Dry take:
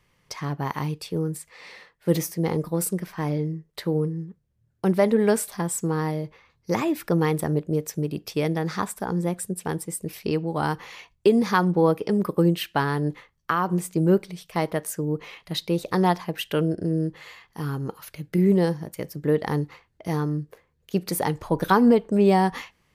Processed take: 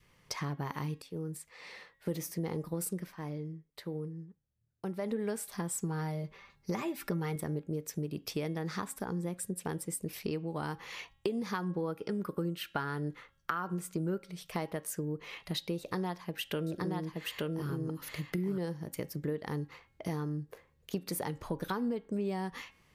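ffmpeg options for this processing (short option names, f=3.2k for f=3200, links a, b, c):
-filter_complex "[0:a]asettb=1/sr,asplit=3[a][b][c];[a]atrim=end=5.834[d];[b]atrim=start=5.83:end=7.36,asetpts=PTS-STARTPTS,afade=t=in:d=0.004:c=qsin,afade=t=out:st=1.526:d=0.004:c=qsin,aecho=1:1:5.1:0.65,atrim=end_sample=67473[e];[c]atrim=start=7.356[f];[d][e]acrossfade=d=0.004:c1=hsin:c2=qsin[g];[g][f]acrossfade=d=0.004:c1=qsin:c2=hsin,asettb=1/sr,asplit=3[h][i][j];[h]atrim=end=11.884[k];[i]atrim=start=11.88:end=14.34,asetpts=PTS-STARTPTS,afade=t=in:d=0.004:c=qsin,afade=t=out:st=2.456:d=0.004:c=qsin,equalizer=f=1.4k:w=7.5:g=11[l];[j]atrim=start=14.336[m];[k][l]acrossfade=d=0.004:c1=hsin:c2=qsin[n];[n][m]acrossfade=d=0.004:c1=qsin:c2=hsin,asettb=1/sr,asplit=3[o][p][q];[o]atrim=end=15.794[r];[p]atrim=start=15.79:end=18.58,asetpts=PTS-STARTPTS,afade=t=in:d=0.004:c=qsin,afade=t=out:st=2.786:d=0.004:c=qsin,aecho=1:1:874:0.708,atrim=end_sample=123039[s];[q]atrim=start=18.576[t];[r][s]acrossfade=d=0.004:c1=hsin:c2=qsin[u];[u][t]acrossfade=d=0.004:c1=qsin:c2=hsin,asplit=4[v][w][x][y];[v]atrim=end=1.02,asetpts=PTS-STARTPTS,afade=t=out:st=1.016:d=0.004:c=hsin:silence=0.177828[z];[w]atrim=start=1.02:end=3.17,asetpts=PTS-STARTPTS,afade=t=in:d=1.37:silence=0.177828,afade=t=out:st=1.99:d=0.16:silence=0.237137[aa];[x]atrim=start=3.17:end=4.99,asetpts=PTS-STARTPTS,volume=-12.5dB[ab];[y]atrim=start=4.99,asetpts=PTS-STARTPTS,afade=t=in:d=0.16:silence=0.237137[ac];[z][aa][ab][ac]concat=n=4:v=0:a=1,acompressor=threshold=-34dB:ratio=4,adynamicequalizer=threshold=0.00224:dfrequency=760:dqfactor=1.8:tfrequency=760:tqfactor=1.8:attack=5:release=100:ratio=0.375:range=2.5:mode=cutabove:tftype=bell,bandreject=f=272.6:t=h:w=4,bandreject=f=545.2:t=h:w=4,bandreject=f=817.8:t=h:w=4,bandreject=f=1.0904k:t=h:w=4,bandreject=f=1.363k:t=h:w=4,bandreject=f=1.6356k:t=h:w=4,bandreject=f=1.9082k:t=h:w=4,bandreject=f=2.1808k:t=h:w=4,bandreject=f=2.4534k:t=h:w=4,bandreject=f=2.726k:t=h:w=4,bandreject=f=2.9986k:t=h:w=4,bandreject=f=3.2712k:t=h:w=4,bandreject=f=3.5438k:t=h:w=4,bandreject=f=3.8164k:t=h:w=4"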